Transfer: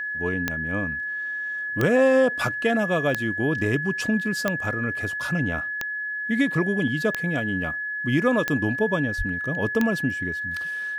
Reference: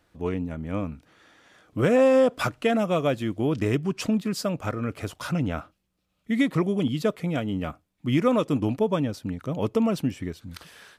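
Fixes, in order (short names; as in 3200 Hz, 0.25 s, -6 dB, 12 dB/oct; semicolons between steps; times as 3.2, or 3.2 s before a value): de-click; notch 1700 Hz, Q 30; de-plosive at 9.17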